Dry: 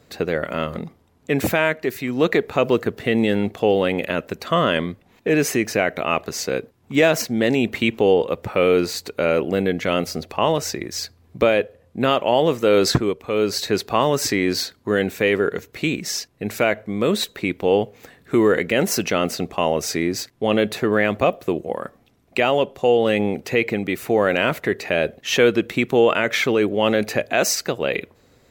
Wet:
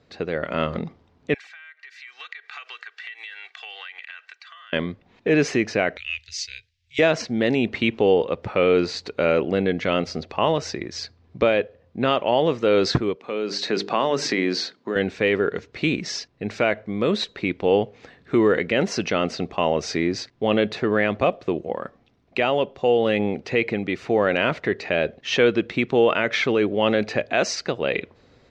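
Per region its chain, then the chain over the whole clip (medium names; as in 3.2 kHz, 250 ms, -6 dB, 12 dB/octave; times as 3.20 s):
1.34–4.73 s: ladder high-pass 1.4 kHz, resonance 40% + comb 2.6 ms, depth 67% + compression 12:1, threshold -39 dBFS
5.97–6.99 s: inverse Chebyshev band-stop 160–1200 Hz + tone controls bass -3 dB, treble +5 dB
13.15–14.96 s: high-pass 160 Hz 24 dB/octave + hum notches 50/100/150/200/250/300/350/400/450 Hz + compression 2:1, threshold -23 dBFS
whole clip: low-pass 5.4 kHz 24 dB/octave; level rider; trim -5.5 dB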